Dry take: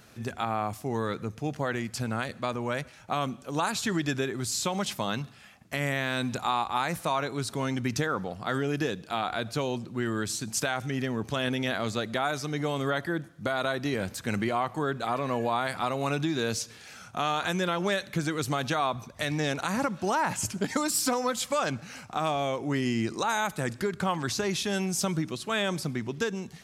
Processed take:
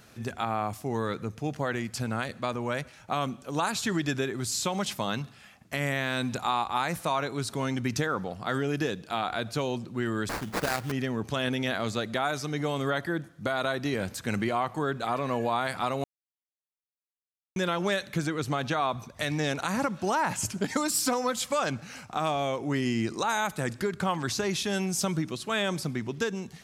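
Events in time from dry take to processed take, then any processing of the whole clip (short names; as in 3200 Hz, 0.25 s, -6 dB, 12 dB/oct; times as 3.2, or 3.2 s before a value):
10.29–10.92 sample-rate reducer 3200 Hz, jitter 20%
16.04–17.56 mute
18.26–18.88 high shelf 4200 Hz -> 7100 Hz -9 dB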